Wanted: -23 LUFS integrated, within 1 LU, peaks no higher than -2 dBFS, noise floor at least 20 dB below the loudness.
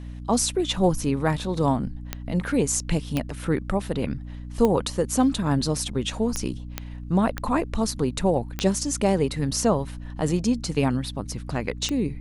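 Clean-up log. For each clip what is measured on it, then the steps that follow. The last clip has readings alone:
clicks 8; hum 60 Hz; harmonics up to 300 Hz; hum level -34 dBFS; loudness -25.0 LUFS; peak -6.0 dBFS; loudness target -23.0 LUFS
-> de-click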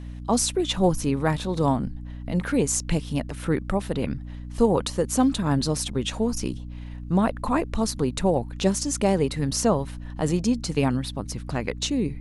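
clicks 0; hum 60 Hz; harmonics up to 300 Hz; hum level -34 dBFS
-> de-hum 60 Hz, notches 5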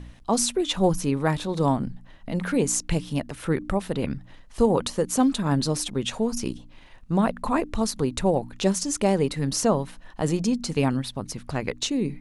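hum none; loudness -25.5 LUFS; peak -8.0 dBFS; loudness target -23.0 LUFS
-> gain +2.5 dB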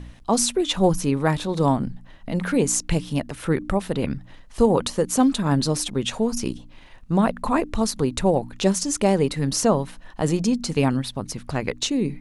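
loudness -23.0 LUFS; peak -5.5 dBFS; noise floor -45 dBFS

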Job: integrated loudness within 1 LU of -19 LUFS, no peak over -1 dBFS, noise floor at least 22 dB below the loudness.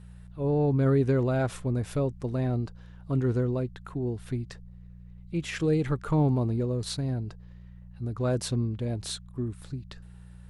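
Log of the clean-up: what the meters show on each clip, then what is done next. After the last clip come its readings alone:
hum 60 Hz; harmonics up to 180 Hz; hum level -46 dBFS; loudness -29.0 LUFS; peak -14.0 dBFS; loudness target -19.0 LUFS
-> de-hum 60 Hz, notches 3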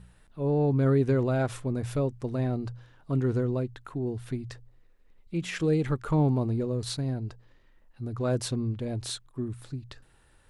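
hum none; loudness -29.0 LUFS; peak -14.0 dBFS; loudness target -19.0 LUFS
-> gain +10 dB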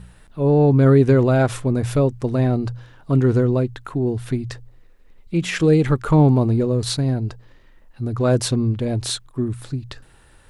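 loudness -19.0 LUFS; peak -4.0 dBFS; noise floor -50 dBFS

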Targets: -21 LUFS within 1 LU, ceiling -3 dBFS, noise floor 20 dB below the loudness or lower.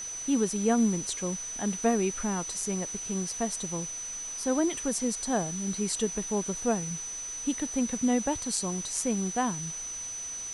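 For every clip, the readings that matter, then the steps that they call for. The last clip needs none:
steady tone 6000 Hz; tone level -35 dBFS; noise floor -38 dBFS; noise floor target -50 dBFS; loudness -29.5 LUFS; peak -11.0 dBFS; loudness target -21.0 LUFS
-> notch 6000 Hz, Q 30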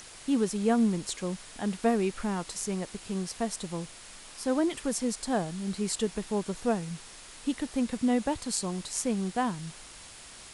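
steady tone none; noise floor -48 dBFS; noise floor target -51 dBFS
-> denoiser 6 dB, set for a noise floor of -48 dBFS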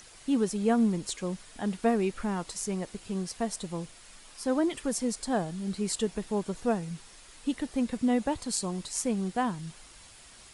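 noise floor -52 dBFS; loudness -31.0 LUFS; peak -11.0 dBFS; loudness target -21.0 LUFS
-> gain +10 dB; limiter -3 dBFS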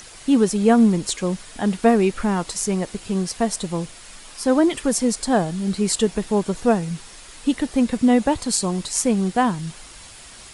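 loudness -21.0 LUFS; peak -3.0 dBFS; noise floor -42 dBFS

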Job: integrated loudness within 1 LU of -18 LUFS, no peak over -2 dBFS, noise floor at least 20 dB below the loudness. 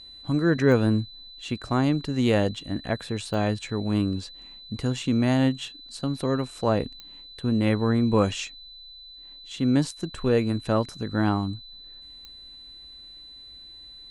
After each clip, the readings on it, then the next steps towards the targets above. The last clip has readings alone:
clicks 4; steady tone 4000 Hz; tone level -43 dBFS; loudness -25.5 LUFS; peak -6.5 dBFS; loudness target -18.0 LUFS
-> de-click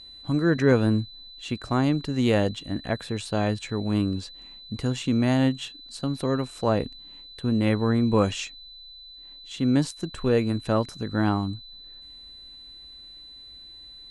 clicks 0; steady tone 4000 Hz; tone level -43 dBFS
-> notch 4000 Hz, Q 30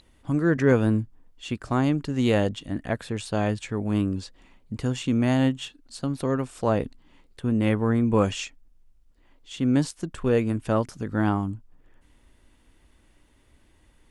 steady tone none; loudness -25.5 LUFS; peak -6.5 dBFS; loudness target -18.0 LUFS
-> gain +7.5 dB; limiter -2 dBFS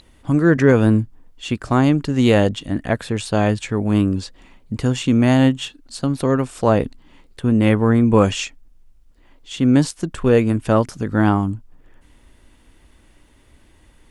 loudness -18.0 LUFS; peak -2.0 dBFS; noise floor -53 dBFS

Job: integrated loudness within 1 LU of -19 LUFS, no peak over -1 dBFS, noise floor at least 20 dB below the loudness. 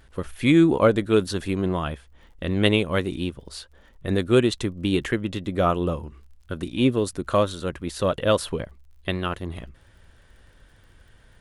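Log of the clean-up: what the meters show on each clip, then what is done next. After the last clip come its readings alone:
ticks 38/s; loudness -23.5 LUFS; peak -4.5 dBFS; loudness target -19.0 LUFS
-> de-click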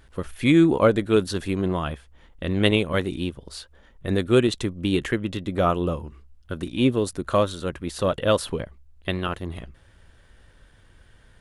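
ticks 0/s; loudness -23.5 LUFS; peak -4.5 dBFS; loudness target -19.0 LUFS
-> gain +4.5 dB; limiter -1 dBFS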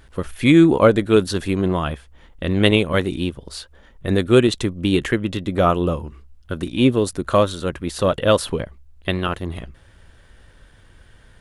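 loudness -19.0 LUFS; peak -1.0 dBFS; noise floor -50 dBFS

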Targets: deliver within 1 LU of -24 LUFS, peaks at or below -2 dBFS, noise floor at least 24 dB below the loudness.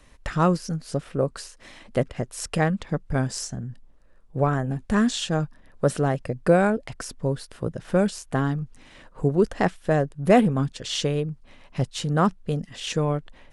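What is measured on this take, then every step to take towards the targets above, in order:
loudness -25.0 LUFS; peak -4.0 dBFS; loudness target -24.0 LUFS
-> gain +1 dB

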